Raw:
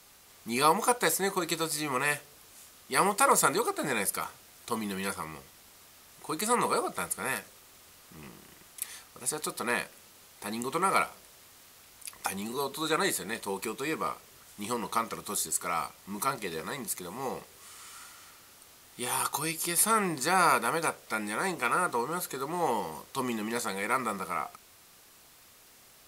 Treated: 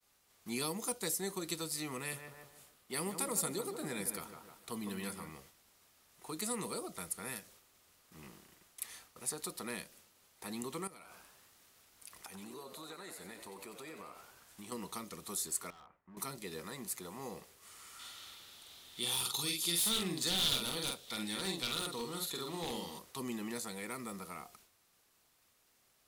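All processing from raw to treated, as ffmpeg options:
-filter_complex "[0:a]asettb=1/sr,asplit=3[a][b][c];[a]atrim=end=1.974[d];[b]atrim=start=1.97:end=5.31,asetpts=PTS-STARTPTS,afade=t=in:d=0.004:c=qsin,afade=t=out:st=3.336:d=0.004:c=qsin,equalizer=f=6.1k:t=o:w=0.68:g=-3.5,asplit=2[e][f];[f]adelay=152,lowpass=f=1.4k:p=1,volume=-8dB,asplit=2[g][h];[h]adelay=152,lowpass=f=1.4k:p=1,volume=0.45,asplit=2[i][j];[j]adelay=152,lowpass=f=1.4k:p=1,volume=0.45,asplit=2[k][l];[l]adelay=152,lowpass=f=1.4k:p=1,volume=0.45,asplit=2[m][n];[n]adelay=152,lowpass=f=1.4k:p=1,volume=0.45[o];[e][g][i][k][m][o]amix=inputs=6:normalize=0,atrim=end_sample=147294[p];[c]atrim=start=5.306[q];[d][p]acrossfade=d=0.004:c1=hsin:c2=qsin[r];[r][q]acrossfade=d=0.004:c1=qsin:c2=hsin,asettb=1/sr,asplit=3[s][t][u];[s]atrim=end=10.874[v];[t]atrim=start=10.87:end=14.72,asetpts=PTS-STARTPTS,afade=t=in:d=0.004:c=qsin,afade=t=out:st=3.846:d=0.004:c=qsin,acompressor=threshold=-40dB:ratio=6:attack=3.2:release=140:knee=1:detection=peak,asplit=9[w][x][y][z][aa][ab][ac][ad][ae];[x]adelay=91,afreqshift=100,volume=-9dB[af];[y]adelay=182,afreqshift=200,volume=-13.2dB[ag];[z]adelay=273,afreqshift=300,volume=-17.3dB[ah];[aa]adelay=364,afreqshift=400,volume=-21.5dB[ai];[ab]adelay=455,afreqshift=500,volume=-25.6dB[aj];[ac]adelay=546,afreqshift=600,volume=-29.8dB[ak];[ad]adelay=637,afreqshift=700,volume=-33.9dB[al];[ae]adelay=728,afreqshift=800,volume=-38.1dB[am];[w][af][ag][ah][ai][aj][ak][al][am]amix=inputs=9:normalize=0,atrim=end_sample=169785[an];[u]atrim=start=14.716[ao];[v][an]acrossfade=d=0.004:c1=hsin:c2=qsin[ap];[ap][ao]acrossfade=d=0.004:c1=qsin:c2=hsin,asettb=1/sr,asplit=3[aq][ar][as];[aq]atrim=end=15.704[at];[ar]atrim=start=15.7:end=16.17,asetpts=PTS-STARTPTS,afade=t=in:d=0.004:c=qsin,afade=t=out:st=0.466:d=0.004:c=qsin,lowpass=f=1.9k:w=0.5412,lowpass=f=1.9k:w=1.3066,volume=34dB,asoftclip=hard,volume=-34dB,acompressor=threshold=-47dB:ratio=6:attack=3.2:release=140:knee=1:detection=peak[au];[as]atrim=start=16.166[av];[at][au]acrossfade=d=0.004:c1=hsin:c2=qsin[aw];[aw][av]acrossfade=d=0.004:c1=qsin:c2=hsin,asettb=1/sr,asplit=3[ax][ay][az];[ax]atrim=end=17.994[ba];[ay]atrim=start=17.99:end=22.99,asetpts=PTS-STARTPTS,afade=t=in:d=0.004:c=qsin,afade=t=out:st=4.996:d=0.004:c=qsin,asplit=2[bb][bc];[bc]adelay=47,volume=-3.5dB[bd];[bb][bd]amix=inputs=2:normalize=0,atrim=end_sample=220500,aeval=exprs='0.0891*(abs(mod(val(0)/0.0891+3,4)-2)-1)':c=same,equalizer=f=3.6k:t=o:w=0.6:g=14.5[be];[az]atrim=start=22.986[bf];[ba][be]acrossfade=d=0.004:c1=hsin:c2=qsin[bg];[bg][bf]acrossfade=d=0.004:c1=qsin:c2=hsin,agate=range=-33dB:threshold=-49dB:ratio=3:detection=peak,acrossover=split=410|3000[bh][bi][bj];[bi]acompressor=threshold=-41dB:ratio=5[bk];[bh][bk][bj]amix=inputs=3:normalize=0,volume=-6dB"

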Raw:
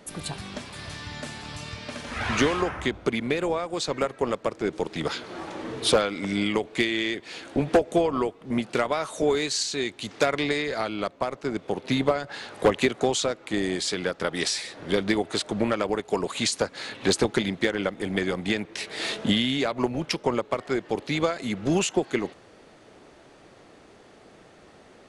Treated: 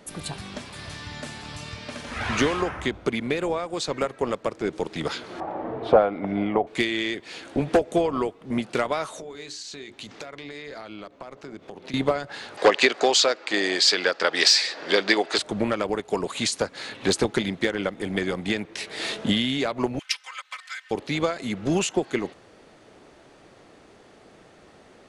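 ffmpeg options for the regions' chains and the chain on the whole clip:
-filter_complex "[0:a]asettb=1/sr,asplit=3[a][b][c];[a]atrim=end=5.404[d];[b]atrim=start=5.4:end=6.67,asetpts=PTS-STARTPTS,afade=t=in:d=0.004:c=qsin,afade=t=out:st=1.266:d=0.004:c=qsin,lowpass=1.4k,equalizer=f=720:w=2.1:g=12[e];[c]atrim=start=6.666[f];[d][e]acrossfade=d=0.004:c1=hsin:c2=qsin[g];[g][f]acrossfade=d=0.004:c1=qsin:c2=hsin,asettb=1/sr,asplit=3[h][i][j];[h]atrim=end=9.094[k];[i]atrim=start=9.09:end=11.94,asetpts=PTS-STARTPTS,afade=t=in:d=0.004:c=qsin,afade=t=out:st=2.846:d=0.004:c=qsin,equalizer=f=9.6k:w=2.1:g=-6,acompressor=threshold=-34dB:ratio=10:attack=3.2:release=140:knee=1:detection=peak,bandreject=f=60:t=h:w=6,bandreject=f=120:t=h:w=6,bandreject=f=180:t=h:w=6,bandreject=f=240:t=h:w=6,bandreject=f=300:t=h:w=6,bandreject=f=360:t=h:w=6,bandreject=f=420:t=h:w=6,bandreject=f=480:t=h:w=6[l];[j]atrim=start=11.936[m];[k][l]acrossfade=d=0.004:c1=hsin:c2=qsin[n];[n][m]acrossfade=d=0.004:c1=qsin:c2=hsin,asettb=1/sr,asplit=3[o][p][q];[o]atrim=end=12.574[r];[p]atrim=start=12.57:end=15.38,asetpts=PTS-STARTPTS,afade=t=in:d=0.004:c=qsin,afade=t=out:st=2.806:d=0.004:c=qsin,highpass=430,equalizer=f=1.7k:t=q:w=4:g=4,equalizer=f=2.6k:t=q:w=4:g=3,equalizer=f=4.7k:t=q:w=4:g=9,lowpass=f=7.7k:w=0.5412,lowpass=f=7.7k:w=1.3066,acontrast=47[s];[q]atrim=start=15.376[t];[r][s]acrossfade=d=0.004:c1=hsin:c2=qsin[u];[u][t]acrossfade=d=0.004:c1=qsin:c2=hsin,asettb=1/sr,asplit=3[v][w][x];[v]atrim=end=19.994[y];[w]atrim=start=19.99:end=20.91,asetpts=PTS-STARTPTS,afade=t=in:d=0.004:c=qsin,afade=t=out:st=0.916:d=0.004:c=qsin,highpass=f=1.5k:w=0.5412,highpass=f=1.5k:w=1.3066,aecho=1:1:3.9:0.99,atrim=end_sample=40572[z];[x]atrim=start=20.906[aa];[y][z]acrossfade=d=0.004:c1=hsin:c2=qsin[ab];[ab][aa]acrossfade=d=0.004:c1=qsin:c2=hsin"

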